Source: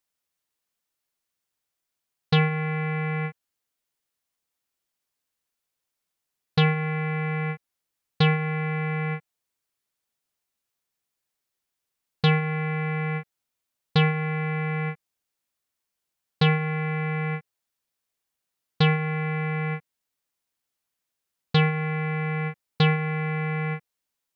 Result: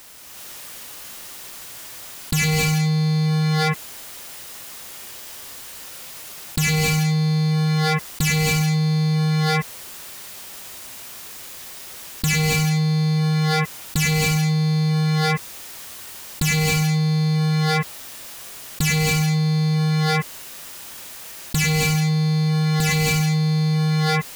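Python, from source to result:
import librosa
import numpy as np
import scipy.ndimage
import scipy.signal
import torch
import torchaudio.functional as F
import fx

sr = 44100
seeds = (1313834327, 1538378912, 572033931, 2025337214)

y = 10.0 ** (-26.5 / 20.0) * (np.abs((x / 10.0 ** (-26.5 / 20.0) + 3.0) % 4.0 - 2.0) - 1.0)
y = fx.rev_gated(y, sr, seeds[0], gate_ms=430, shape='rising', drr_db=-6.0)
y = fx.env_flatten(y, sr, amount_pct=100)
y = y * librosa.db_to_amplitude(-1.0)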